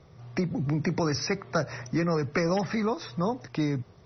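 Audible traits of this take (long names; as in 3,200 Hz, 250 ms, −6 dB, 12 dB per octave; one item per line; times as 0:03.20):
MP3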